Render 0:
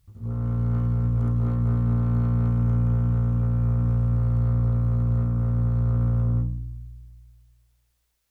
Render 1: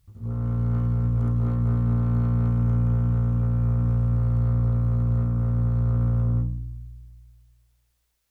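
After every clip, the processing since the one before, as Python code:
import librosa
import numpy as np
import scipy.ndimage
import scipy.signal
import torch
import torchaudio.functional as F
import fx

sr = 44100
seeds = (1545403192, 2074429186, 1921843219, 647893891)

y = x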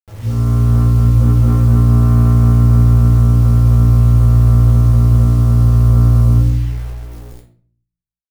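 y = fx.quant_dither(x, sr, seeds[0], bits=8, dither='none')
y = fx.room_shoebox(y, sr, seeds[1], volume_m3=42.0, walls='mixed', distance_m=0.75)
y = y * 10.0 ** (7.0 / 20.0)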